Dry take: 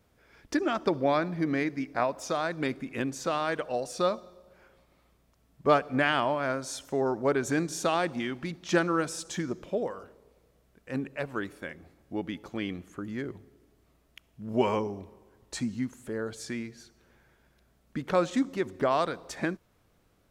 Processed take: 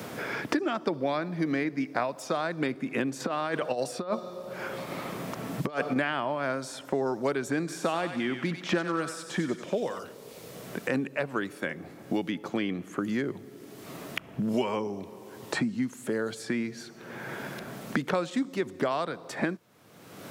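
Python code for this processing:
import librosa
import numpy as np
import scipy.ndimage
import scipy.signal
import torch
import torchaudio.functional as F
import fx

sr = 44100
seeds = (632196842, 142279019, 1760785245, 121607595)

y = fx.over_compress(x, sr, threshold_db=-32.0, ratio=-0.5, at=(3.2, 5.96))
y = fx.echo_thinned(y, sr, ms=94, feedback_pct=48, hz=1200.0, wet_db=-7, at=(7.67, 9.98), fade=0.02)
y = scipy.signal.sosfilt(scipy.signal.butter(4, 120.0, 'highpass', fs=sr, output='sos'), y)
y = fx.dynamic_eq(y, sr, hz=6300.0, q=4.6, threshold_db=-59.0, ratio=4.0, max_db=-6)
y = fx.band_squash(y, sr, depth_pct=100)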